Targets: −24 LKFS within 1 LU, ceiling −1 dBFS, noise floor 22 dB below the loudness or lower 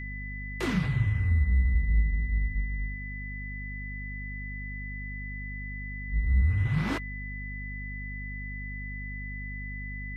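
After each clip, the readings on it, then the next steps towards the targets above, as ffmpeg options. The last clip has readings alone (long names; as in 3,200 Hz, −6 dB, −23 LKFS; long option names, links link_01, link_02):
mains hum 50 Hz; hum harmonics up to 250 Hz; level of the hum −35 dBFS; interfering tone 2,000 Hz; level of the tone −39 dBFS; integrated loudness −31.5 LKFS; sample peak −14.5 dBFS; target loudness −24.0 LKFS
→ -af "bandreject=frequency=50:width_type=h:width=6,bandreject=frequency=100:width_type=h:width=6,bandreject=frequency=150:width_type=h:width=6,bandreject=frequency=200:width_type=h:width=6,bandreject=frequency=250:width_type=h:width=6"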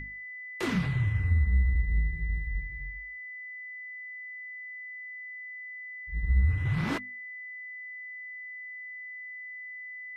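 mains hum none found; interfering tone 2,000 Hz; level of the tone −39 dBFS
→ -af "bandreject=frequency=2000:width=30"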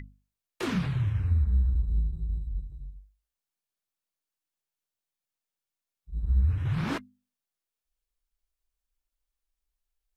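interfering tone none found; integrated loudness −29.5 LKFS; sample peak −15.5 dBFS; target loudness −24.0 LKFS
→ -af "volume=5.5dB"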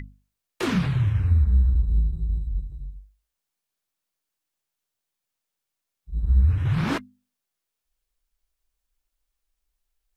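integrated loudness −24.0 LKFS; sample peak −10.0 dBFS; background noise floor −84 dBFS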